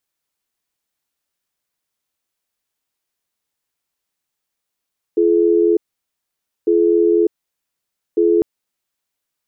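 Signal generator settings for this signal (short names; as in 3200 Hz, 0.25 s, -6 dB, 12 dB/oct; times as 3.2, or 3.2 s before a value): cadence 342 Hz, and 426 Hz, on 0.60 s, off 0.90 s, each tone -13.5 dBFS 3.25 s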